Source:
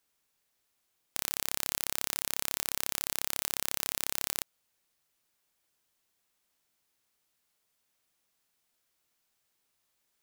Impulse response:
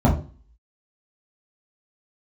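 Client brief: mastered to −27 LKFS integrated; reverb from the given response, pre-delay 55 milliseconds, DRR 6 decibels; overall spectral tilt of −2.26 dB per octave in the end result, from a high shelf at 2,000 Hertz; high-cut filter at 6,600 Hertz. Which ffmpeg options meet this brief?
-filter_complex "[0:a]lowpass=6600,highshelf=frequency=2000:gain=8,asplit=2[link_01][link_02];[1:a]atrim=start_sample=2205,adelay=55[link_03];[link_02][link_03]afir=irnorm=-1:irlink=0,volume=-24dB[link_04];[link_01][link_04]amix=inputs=2:normalize=0,volume=4.5dB"

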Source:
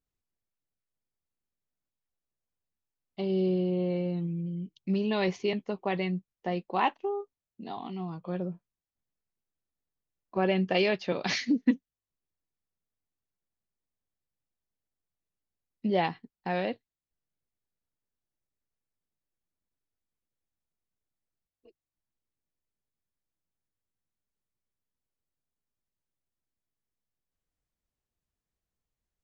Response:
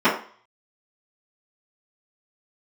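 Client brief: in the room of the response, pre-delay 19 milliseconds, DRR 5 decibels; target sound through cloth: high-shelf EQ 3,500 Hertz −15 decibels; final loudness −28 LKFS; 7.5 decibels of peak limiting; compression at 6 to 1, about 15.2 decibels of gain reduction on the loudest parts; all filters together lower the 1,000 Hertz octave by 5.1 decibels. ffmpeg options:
-filter_complex "[0:a]equalizer=frequency=1000:width_type=o:gain=-6,acompressor=threshold=-35dB:ratio=6,alimiter=level_in=7.5dB:limit=-24dB:level=0:latency=1,volume=-7.5dB,asplit=2[link_01][link_02];[1:a]atrim=start_sample=2205,adelay=19[link_03];[link_02][link_03]afir=irnorm=-1:irlink=0,volume=-26.5dB[link_04];[link_01][link_04]amix=inputs=2:normalize=0,highshelf=frequency=3500:gain=-15,volume=12dB"

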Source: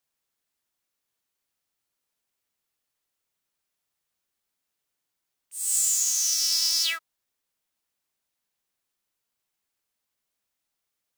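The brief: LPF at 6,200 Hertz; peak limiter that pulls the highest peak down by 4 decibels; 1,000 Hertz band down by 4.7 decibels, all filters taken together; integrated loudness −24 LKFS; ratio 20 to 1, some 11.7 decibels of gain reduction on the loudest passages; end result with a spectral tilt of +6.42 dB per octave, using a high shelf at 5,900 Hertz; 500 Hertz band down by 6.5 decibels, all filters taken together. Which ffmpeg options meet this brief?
ffmpeg -i in.wav -af "lowpass=6200,equalizer=frequency=500:width_type=o:gain=-7,equalizer=frequency=1000:width_type=o:gain=-5.5,highshelf=frequency=5900:gain=-8,acompressor=threshold=-36dB:ratio=20,volume=16dB,alimiter=limit=-13.5dB:level=0:latency=1" out.wav

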